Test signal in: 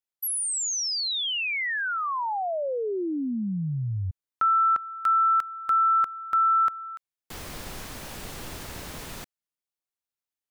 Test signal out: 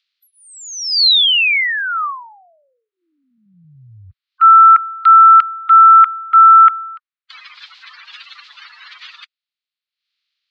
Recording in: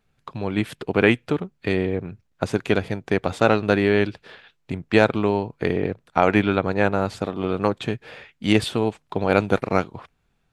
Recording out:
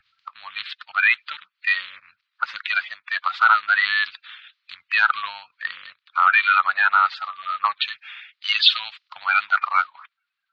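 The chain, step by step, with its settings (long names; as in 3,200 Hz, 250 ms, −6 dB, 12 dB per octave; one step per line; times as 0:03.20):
spectral magnitudes quantised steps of 30 dB
elliptic band-pass filter 1,200–4,300 Hz, stop band 50 dB
upward compression, threshold −35 dBFS
boost into a limiter +18.5 dB
multiband upward and downward expander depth 100%
level −7.5 dB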